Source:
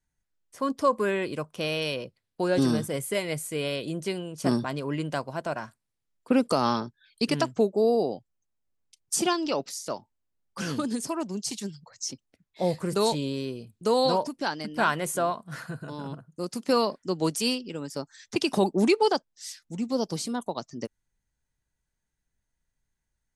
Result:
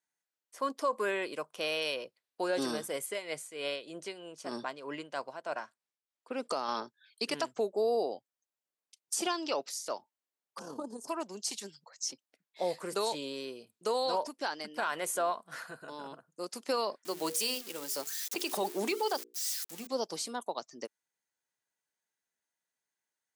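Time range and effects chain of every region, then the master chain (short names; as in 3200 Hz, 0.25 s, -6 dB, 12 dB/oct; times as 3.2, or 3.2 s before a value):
3.06–6.69 tremolo 3.2 Hz, depth 61% + LPF 8200 Hz
10.59–11.08 EQ curve 540 Hz 0 dB, 980 Hz +3 dB, 2100 Hz -29 dB, 6000 Hz -9 dB + AM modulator 35 Hz, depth 30%
17.05–19.87 switching spikes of -28 dBFS + notches 60/120/180/240/300/360/420/480 Hz
whole clip: HPF 450 Hz 12 dB/oct; limiter -19 dBFS; gain -2.5 dB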